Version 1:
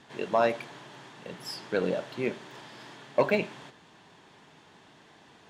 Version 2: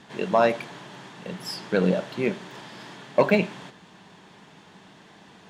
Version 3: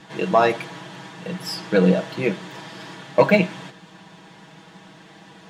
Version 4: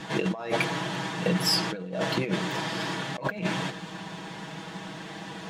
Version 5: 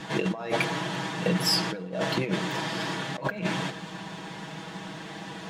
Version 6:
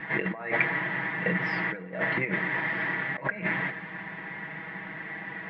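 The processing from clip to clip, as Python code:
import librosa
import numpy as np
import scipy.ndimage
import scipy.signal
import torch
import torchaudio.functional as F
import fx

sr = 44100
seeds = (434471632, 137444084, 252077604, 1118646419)

y1 = fx.peak_eq(x, sr, hz=190.0, db=10.5, octaves=0.23)
y1 = y1 * 10.0 ** (4.5 / 20.0)
y2 = y1 + 0.72 * np.pad(y1, (int(6.2 * sr / 1000.0), 0))[:len(y1)]
y2 = y2 * 10.0 ** (2.5 / 20.0)
y3 = fx.over_compress(y2, sr, threshold_db=-29.0, ratio=-1.0)
y4 = fx.rev_plate(y3, sr, seeds[0], rt60_s=1.4, hf_ratio=0.4, predelay_ms=0, drr_db=19.0)
y5 = fx.ladder_lowpass(y4, sr, hz=2100.0, resonance_pct=80)
y5 = y5 * 10.0 ** (8.0 / 20.0)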